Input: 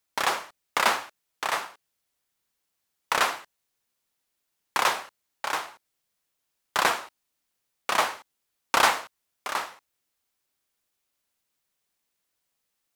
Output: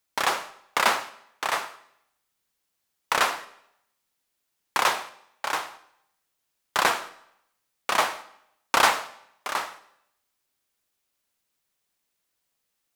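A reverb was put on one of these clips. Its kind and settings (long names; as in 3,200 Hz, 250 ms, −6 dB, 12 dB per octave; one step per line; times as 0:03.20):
comb and all-pass reverb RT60 0.76 s, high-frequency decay 0.95×, pre-delay 50 ms, DRR 18 dB
level +1 dB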